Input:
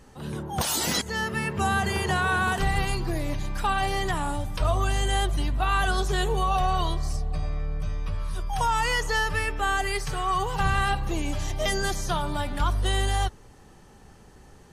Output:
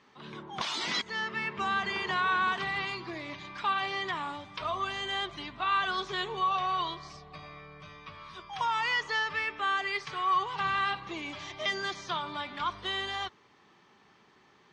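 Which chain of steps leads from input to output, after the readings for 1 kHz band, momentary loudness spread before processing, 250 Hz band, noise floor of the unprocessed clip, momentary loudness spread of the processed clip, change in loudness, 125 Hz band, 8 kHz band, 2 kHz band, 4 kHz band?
-3.5 dB, 8 LU, -11.0 dB, -51 dBFS, 17 LU, -4.5 dB, -20.0 dB, -16.5 dB, -3.0 dB, -2.5 dB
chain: cabinet simulation 250–5300 Hz, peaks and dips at 270 Hz -3 dB, 510 Hz -8 dB, 770 Hz -4 dB, 1.1 kHz +7 dB, 2.2 kHz +8 dB, 3.5 kHz +6 dB; trim -6 dB

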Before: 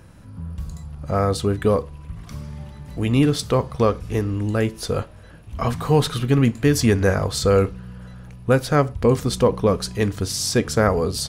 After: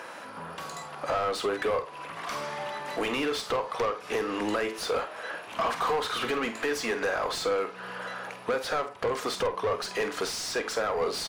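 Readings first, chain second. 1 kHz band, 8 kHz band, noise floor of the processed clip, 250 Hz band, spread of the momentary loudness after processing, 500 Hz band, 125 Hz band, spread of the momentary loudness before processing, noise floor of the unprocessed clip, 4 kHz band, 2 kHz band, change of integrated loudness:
-2.5 dB, -9.0 dB, -43 dBFS, -15.0 dB, 9 LU, -8.0 dB, -26.5 dB, 18 LU, -43 dBFS, -4.5 dB, -1.5 dB, -9.5 dB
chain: high-pass 530 Hz 12 dB/octave; compression 12:1, threshold -32 dBFS, peak gain reduction 18 dB; overdrive pedal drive 25 dB, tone 1.8 kHz, clips at -18 dBFS; doubling 48 ms -11 dB

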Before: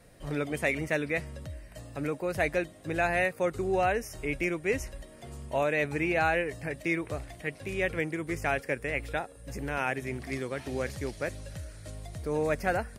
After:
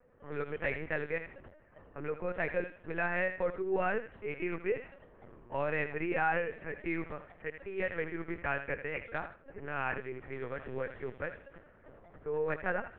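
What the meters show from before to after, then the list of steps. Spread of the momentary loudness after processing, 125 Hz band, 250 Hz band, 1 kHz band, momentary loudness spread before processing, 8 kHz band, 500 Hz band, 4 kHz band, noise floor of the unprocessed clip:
11 LU, -8.5 dB, -7.0 dB, -5.0 dB, 15 LU, under -35 dB, -4.5 dB, -12.0 dB, -51 dBFS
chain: cabinet simulation 280–2500 Hz, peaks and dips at 280 Hz -4 dB, 660 Hz -10 dB, 2.2 kHz -6 dB; on a send: thinning echo 79 ms, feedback 32%, high-pass 810 Hz, level -8.5 dB; on the sum: level-controlled noise filter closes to 1.3 kHz, open at -29 dBFS; LPC vocoder at 8 kHz pitch kept; trim -1 dB

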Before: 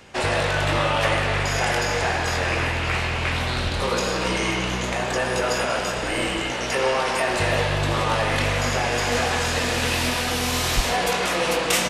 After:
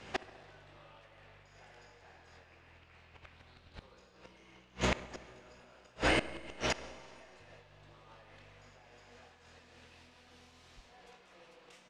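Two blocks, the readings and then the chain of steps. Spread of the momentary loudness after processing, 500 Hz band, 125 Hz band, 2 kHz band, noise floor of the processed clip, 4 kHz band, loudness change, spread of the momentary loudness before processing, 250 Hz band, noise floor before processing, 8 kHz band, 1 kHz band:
23 LU, -20.5 dB, -22.5 dB, -20.0 dB, -62 dBFS, -20.5 dB, -13.0 dB, 3 LU, -17.0 dB, -26 dBFS, -23.5 dB, -21.5 dB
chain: low-pass 6.2 kHz 12 dB/octave; inverted gate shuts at -15 dBFS, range -33 dB; on a send: filtered feedback delay 67 ms, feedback 80%, low-pass 2.1 kHz, level -19 dB; on the sum: Schroeder reverb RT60 2.6 s, combs from 32 ms, DRR 16.5 dB; random flutter of the level, depth 60%

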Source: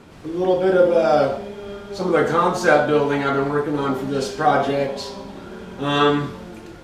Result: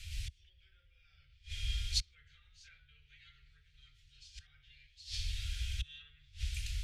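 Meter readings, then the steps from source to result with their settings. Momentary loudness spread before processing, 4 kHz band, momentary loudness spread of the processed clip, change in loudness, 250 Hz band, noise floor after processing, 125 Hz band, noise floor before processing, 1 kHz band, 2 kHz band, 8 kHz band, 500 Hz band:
18 LU, -10.0 dB, 24 LU, -21.0 dB, under -40 dB, -68 dBFS, -14.5 dB, -40 dBFS, under -40 dB, -26.0 dB, -8.0 dB, under -40 dB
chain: low-pass that closes with the level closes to 1.9 kHz, closed at -13 dBFS; bass shelf 180 Hz +7.5 dB; inverted gate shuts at -19 dBFS, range -28 dB; inverse Chebyshev band-stop 180–1100 Hz, stop band 50 dB; trim +6 dB

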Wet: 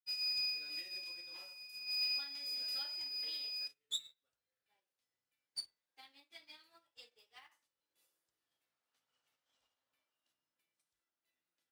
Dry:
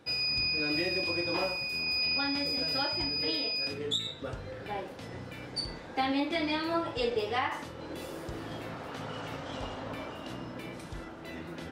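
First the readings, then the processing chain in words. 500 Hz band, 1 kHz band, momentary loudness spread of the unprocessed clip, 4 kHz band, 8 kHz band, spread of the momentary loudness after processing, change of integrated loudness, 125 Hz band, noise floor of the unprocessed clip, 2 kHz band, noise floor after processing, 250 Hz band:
-34.0 dB, -29.0 dB, 14 LU, -8.0 dB, -4.5 dB, 19 LU, -7.0 dB, under -35 dB, -45 dBFS, -15.5 dB, under -85 dBFS, under -35 dB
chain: pre-emphasis filter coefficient 0.97; companded quantiser 6-bit; upward expansion 2.5:1, over -56 dBFS

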